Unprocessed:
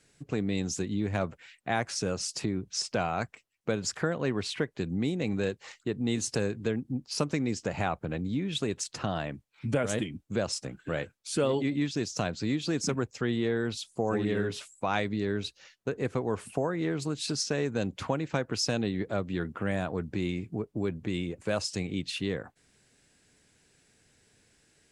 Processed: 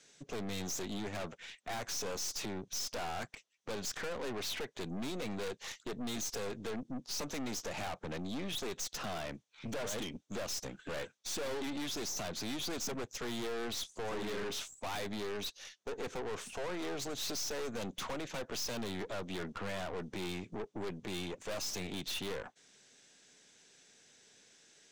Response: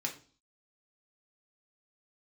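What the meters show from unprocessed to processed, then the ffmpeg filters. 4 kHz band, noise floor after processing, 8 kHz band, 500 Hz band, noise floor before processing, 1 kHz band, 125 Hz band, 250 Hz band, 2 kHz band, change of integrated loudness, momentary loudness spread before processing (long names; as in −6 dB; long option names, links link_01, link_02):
−3.5 dB, −69 dBFS, −3.0 dB, −8.5 dB, −68 dBFS, −7.0 dB, −14.0 dB, −11.0 dB, −7.0 dB, −8.0 dB, 6 LU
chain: -af "highpass=240,equalizer=frequency=310:width_type=q:width=4:gain=-4,equalizer=frequency=3500:width_type=q:width=4:gain=7,equalizer=frequency=6100:width_type=q:width=4:gain=9,lowpass=frequency=8400:width=0.5412,lowpass=frequency=8400:width=1.3066,aeval=exprs='(tanh(112*val(0)+0.6)-tanh(0.6))/112':channel_layout=same,volume=4dB"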